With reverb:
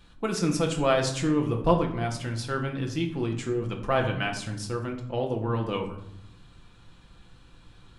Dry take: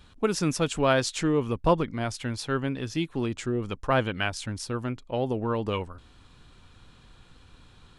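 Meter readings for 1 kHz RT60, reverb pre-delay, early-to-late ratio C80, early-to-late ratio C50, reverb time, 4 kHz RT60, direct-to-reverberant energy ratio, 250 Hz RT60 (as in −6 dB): 0.75 s, 6 ms, 11.5 dB, 8.5 dB, 0.85 s, 0.45 s, 2.0 dB, 1.2 s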